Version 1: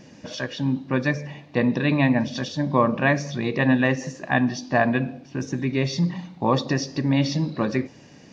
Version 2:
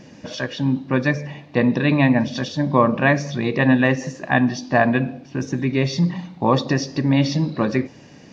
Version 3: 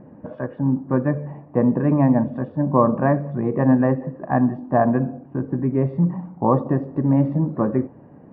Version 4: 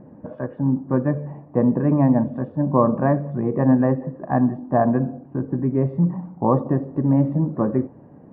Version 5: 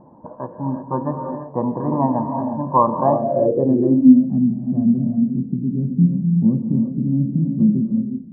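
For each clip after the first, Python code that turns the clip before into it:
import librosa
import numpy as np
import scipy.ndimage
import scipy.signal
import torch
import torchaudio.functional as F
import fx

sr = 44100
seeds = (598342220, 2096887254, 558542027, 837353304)

y1 = fx.high_shelf(x, sr, hz=6300.0, db=-4.5)
y1 = y1 * librosa.db_to_amplitude(3.5)
y2 = scipy.signal.sosfilt(scipy.signal.butter(4, 1200.0, 'lowpass', fs=sr, output='sos'), y1)
y3 = fx.high_shelf(y2, sr, hz=2100.0, db=-8.5)
y4 = fx.comb_fb(y3, sr, f0_hz=340.0, decay_s=0.61, harmonics='all', damping=0.0, mix_pct=60)
y4 = fx.rev_gated(y4, sr, seeds[0], gate_ms=390, shape='rising', drr_db=4.0)
y4 = fx.filter_sweep_lowpass(y4, sr, from_hz=960.0, to_hz=210.0, start_s=2.96, end_s=4.32, q=7.2)
y4 = y4 * librosa.db_to_amplitude(2.5)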